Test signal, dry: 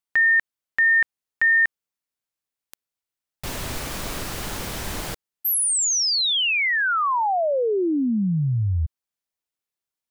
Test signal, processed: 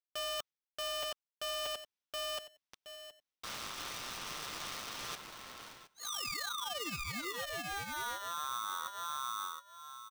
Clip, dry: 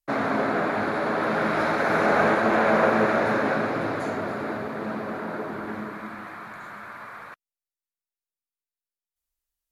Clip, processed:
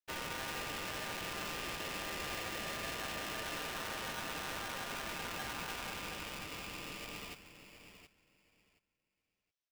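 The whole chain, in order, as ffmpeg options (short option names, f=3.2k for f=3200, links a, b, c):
-filter_complex "[0:a]equalizer=f=460:t=o:w=2.9:g=-6,asplit=2[a][b];[b]adelay=722,lowpass=f=2k:p=1,volume=-9dB,asplit=2[c][d];[d]adelay=722,lowpass=f=2k:p=1,volume=0.21,asplit=2[e][f];[f]adelay=722,lowpass=f=2k:p=1,volume=0.21[g];[c][e][g]amix=inputs=3:normalize=0[h];[a][h]amix=inputs=2:normalize=0,aresample=11025,aresample=44100,highshelf=f=2.5k:g=9,aecho=1:1:7.3:0.6,areverse,acompressor=threshold=-29dB:ratio=10:attack=9.3:release=670:knee=1:detection=peak,areverse,highpass=f=81:w=0.5412,highpass=f=81:w=1.3066,aeval=exprs='(tanh(44.7*val(0)+0.7)-tanh(0.7))/44.7':c=same,aeval=exprs='val(0)*sgn(sin(2*PI*1200*n/s))':c=same,volume=-3dB"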